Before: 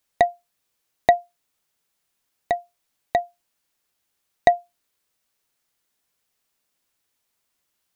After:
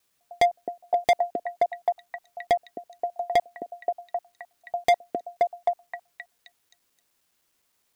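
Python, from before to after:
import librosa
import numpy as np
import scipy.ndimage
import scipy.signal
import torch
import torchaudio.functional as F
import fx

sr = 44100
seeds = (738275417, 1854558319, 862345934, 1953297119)

y = fx.block_reorder(x, sr, ms=103.0, group=7)
y = fx.echo_stepped(y, sr, ms=263, hz=330.0, octaves=0.7, feedback_pct=70, wet_db=-5.5)
y = np.clip(10.0 ** (19.0 / 20.0) * y, -1.0, 1.0) / 10.0 ** (19.0 / 20.0)
y = y * 10.0 ** (4.0 / 20.0)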